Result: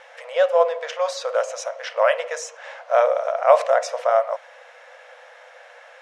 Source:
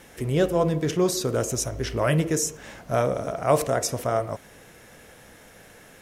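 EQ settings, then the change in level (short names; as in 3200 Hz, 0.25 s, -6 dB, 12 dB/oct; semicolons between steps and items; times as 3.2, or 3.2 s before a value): brick-wall FIR high-pass 480 Hz; LPF 2600 Hz 6 dB/oct; air absorption 91 m; +8.0 dB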